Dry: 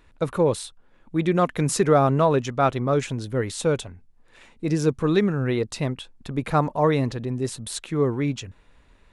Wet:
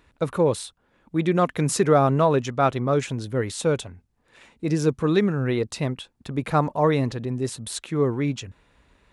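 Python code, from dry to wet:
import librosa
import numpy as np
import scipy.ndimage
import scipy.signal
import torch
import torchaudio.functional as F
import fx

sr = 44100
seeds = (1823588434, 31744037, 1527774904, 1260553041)

y = scipy.signal.sosfilt(scipy.signal.butter(2, 47.0, 'highpass', fs=sr, output='sos'), x)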